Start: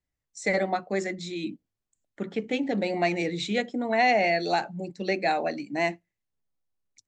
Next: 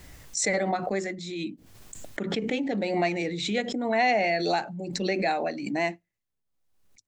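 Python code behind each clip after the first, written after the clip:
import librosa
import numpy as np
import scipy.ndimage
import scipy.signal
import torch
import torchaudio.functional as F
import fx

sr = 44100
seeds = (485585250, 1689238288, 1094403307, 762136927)

y = fx.pre_swell(x, sr, db_per_s=43.0)
y = y * 10.0 ** (-1.5 / 20.0)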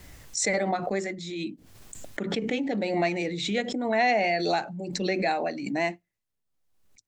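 y = fx.wow_flutter(x, sr, seeds[0], rate_hz=2.1, depth_cents=28.0)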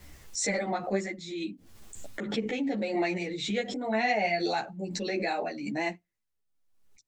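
y = fx.ensemble(x, sr)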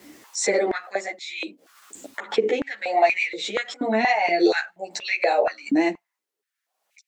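y = fx.filter_held_highpass(x, sr, hz=4.2, low_hz=290.0, high_hz=2300.0)
y = y * 10.0 ** (4.5 / 20.0)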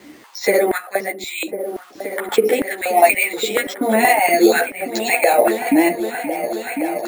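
y = fx.echo_opening(x, sr, ms=525, hz=200, octaves=2, feedback_pct=70, wet_db=-6)
y = np.repeat(scipy.signal.resample_poly(y, 1, 4), 4)[:len(y)]
y = y * 10.0 ** (6.0 / 20.0)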